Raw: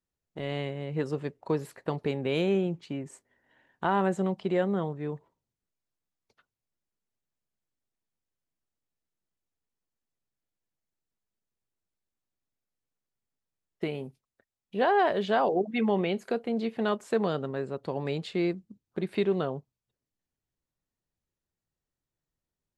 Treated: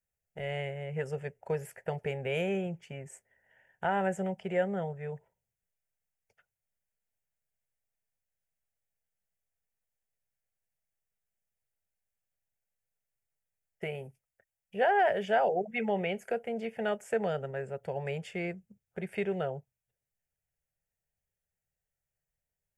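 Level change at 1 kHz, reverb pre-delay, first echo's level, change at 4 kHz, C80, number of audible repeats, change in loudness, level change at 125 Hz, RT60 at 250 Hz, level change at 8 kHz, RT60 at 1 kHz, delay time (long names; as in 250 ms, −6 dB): −2.0 dB, no reverb audible, no echo audible, −5.5 dB, no reverb audible, no echo audible, −3.5 dB, −4.0 dB, no reverb audible, can't be measured, no reverb audible, no echo audible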